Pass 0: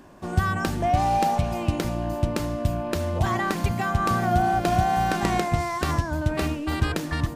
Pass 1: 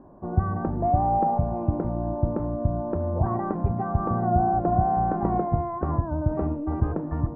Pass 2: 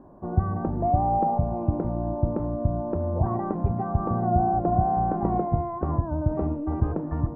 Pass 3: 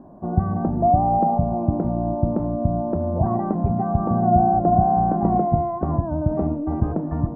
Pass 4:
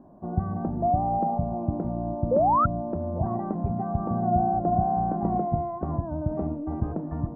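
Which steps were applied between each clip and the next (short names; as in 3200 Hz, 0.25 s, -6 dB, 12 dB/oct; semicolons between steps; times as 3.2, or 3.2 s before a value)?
LPF 1000 Hz 24 dB/oct
dynamic EQ 1600 Hz, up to -5 dB, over -42 dBFS, Q 1.5
small resonant body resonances 200/670 Hz, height 8 dB, ringing for 20 ms
painted sound rise, 2.31–2.66, 480–1400 Hz -14 dBFS; gain -6.5 dB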